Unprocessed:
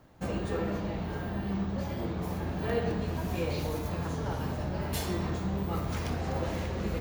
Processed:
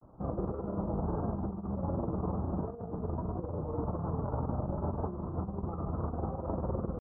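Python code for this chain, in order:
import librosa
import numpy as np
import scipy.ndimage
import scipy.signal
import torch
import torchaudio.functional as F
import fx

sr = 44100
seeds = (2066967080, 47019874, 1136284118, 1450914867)

y = scipy.signal.sosfilt(scipy.signal.butter(12, 1300.0, 'lowpass', fs=sr, output='sos'), x)
y = fx.over_compress(y, sr, threshold_db=-34.0, ratio=-0.5)
y = fx.granulator(y, sr, seeds[0], grain_ms=88.0, per_s=20.0, spray_ms=18.0, spread_st=0)
y = y * librosa.db_to_amplitude(2.0)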